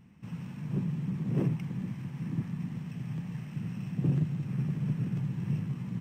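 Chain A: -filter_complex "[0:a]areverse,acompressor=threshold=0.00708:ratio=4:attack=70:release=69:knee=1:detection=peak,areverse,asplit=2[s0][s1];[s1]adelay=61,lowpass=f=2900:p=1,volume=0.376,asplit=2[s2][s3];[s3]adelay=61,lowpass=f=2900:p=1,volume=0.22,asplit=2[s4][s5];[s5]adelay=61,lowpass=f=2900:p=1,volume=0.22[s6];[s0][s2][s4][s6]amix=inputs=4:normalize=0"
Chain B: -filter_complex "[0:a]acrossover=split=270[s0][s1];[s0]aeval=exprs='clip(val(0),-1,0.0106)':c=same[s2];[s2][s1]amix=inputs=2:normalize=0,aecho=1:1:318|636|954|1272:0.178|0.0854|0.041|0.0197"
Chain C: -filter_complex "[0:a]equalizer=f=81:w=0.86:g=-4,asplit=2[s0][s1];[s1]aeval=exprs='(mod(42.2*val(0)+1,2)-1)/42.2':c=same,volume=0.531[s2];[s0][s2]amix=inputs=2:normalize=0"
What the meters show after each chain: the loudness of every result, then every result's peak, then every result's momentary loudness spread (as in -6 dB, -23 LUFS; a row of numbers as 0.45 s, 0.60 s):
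-40.0 LUFS, -36.0 LUFS, -34.5 LUFS; -27.5 dBFS, -17.5 dBFS, -17.5 dBFS; 2 LU, 7 LU, 6 LU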